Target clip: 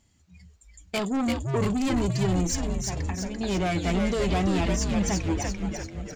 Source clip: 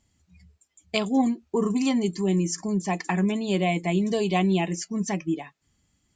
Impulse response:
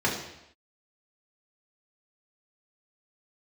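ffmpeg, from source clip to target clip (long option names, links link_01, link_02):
-filter_complex "[0:a]asettb=1/sr,asplit=3[link_01][link_02][link_03];[link_01]atrim=end=0.994[link_04];[link_02]atrim=start=0.99:end=1.93,asetpts=PTS-STARTPTS,afade=type=in:duration=0.004:curve=qsin,afade=type=out:start_time=0.936:duration=0.004:curve=qsin,highpass=160[link_05];[link_03]atrim=start=1.926[link_06];[link_04][link_05]acrossfade=duration=0.004:curve1=hsin:curve2=qsin[link_07];[link_07][link_06]acrossfade=duration=0.004:curve1=qsin:curve2=hsin,asettb=1/sr,asplit=3[link_08][link_09][link_10];[link_08]atrim=end=2.644[link_11];[link_09]atrim=start=2.64:end=3.41,asetpts=PTS-STARTPTS,afade=type=in:duration=0.004:curve=qsin,afade=type=out:start_time=0.766:duration=0.004:curve=qsin,acompressor=threshold=-36dB:ratio=12[link_12];[link_10]atrim=start=3.406[link_13];[link_11][link_12]acrossfade=duration=0.004:curve1=hsin:curve2=qsin[link_14];[link_14][link_13]acrossfade=duration=0.004:curve1=qsin:curve2=hsin,asoftclip=type=tanh:threshold=-26.5dB,asplit=9[link_15][link_16][link_17][link_18][link_19][link_20][link_21][link_22][link_23];[link_16]adelay=341,afreqshift=-130,volume=-3dB[link_24];[link_17]adelay=682,afreqshift=-260,volume=-8.2dB[link_25];[link_18]adelay=1023,afreqshift=-390,volume=-13.4dB[link_26];[link_19]adelay=1364,afreqshift=-520,volume=-18.6dB[link_27];[link_20]adelay=1705,afreqshift=-650,volume=-23.8dB[link_28];[link_21]adelay=2046,afreqshift=-780,volume=-29dB[link_29];[link_22]adelay=2387,afreqshift=-910,volume=-34.2dB[link_30];[link_23]adelay=2728,afreqshift=-1040,volume=-39.3dB[link_31];[link_15][link_24][link_25][link_26][link_27][link_28][link_29][link_30][link_31]amix=inputs=9:normalize=0,volume=3.5dB"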